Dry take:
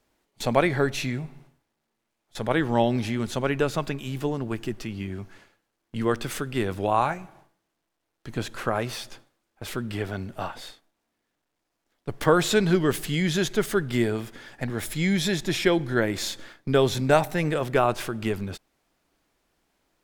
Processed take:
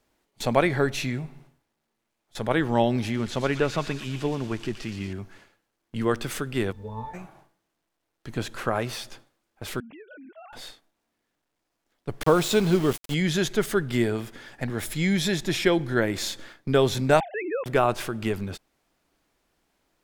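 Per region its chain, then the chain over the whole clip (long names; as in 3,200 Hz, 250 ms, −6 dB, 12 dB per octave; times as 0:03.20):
0:03.14–0:05.13: spike at every zero crossing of −28.5 dBFS + low-pass filter 5,000 Hz + delay with a high-pass on its return 118 ms, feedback 60%, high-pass 1,900 Hz, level −6.5 dB
0:06.71–0:07.13: resonances in every octave A, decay 0.17 s + background noise brown −50 dBFS
0:09.80–0:10.53: three sine waves on the formant tracks + downward compressor 8 to 1, threshold −43 dBFS
0:12.23–0:13.14: parametric band 1,700 Hz −10 dB 0.36 octaves + downward expander −28 dBFS + centre clipping without the shift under −30.5 dBFS
0:17.20–0:17.66: three sine waves on the formant tracks + downward compressor 1.5 to 1, threshold −34 dBFS
whole clip: no processing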